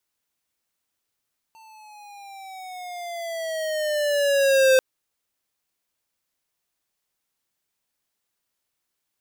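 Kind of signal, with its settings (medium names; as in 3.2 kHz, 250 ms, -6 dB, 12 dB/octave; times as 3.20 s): gliding synth tone square, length 3.24 s, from 898 Hz, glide -9.5 st, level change +34 dB, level -15 dB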